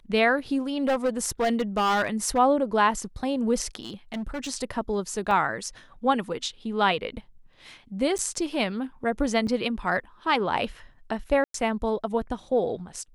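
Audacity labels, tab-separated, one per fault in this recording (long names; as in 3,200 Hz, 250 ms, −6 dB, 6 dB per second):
0.880000	2.390000	clipping −19.5 dBFS
3.820000	4.500000	clipping −28 dBFS
5.310000	5.310000	drop-out 2.4 ms
8.180000	8.190000	drop-out 8.7 ms
9.470000	9.470000	drop-out 4.5 ms
11.440000	11.540000	drop-out 103 ms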